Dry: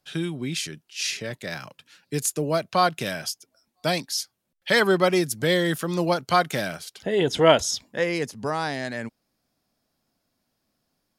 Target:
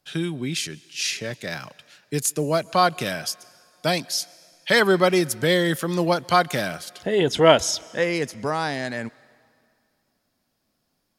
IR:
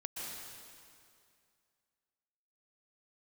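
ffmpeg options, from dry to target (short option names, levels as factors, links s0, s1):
-filter_complex "[0:a]asplit=2[s0][s1];[1:a]atrim=start_sample=2205,lowshelf=f=320:g=-9.5[s2];[s1][s2]afir=irnorm=-1:irlink=0,volume=0.0891[s3];[s0][s3]amix=inputs=2:normalize=0,volume=1.19"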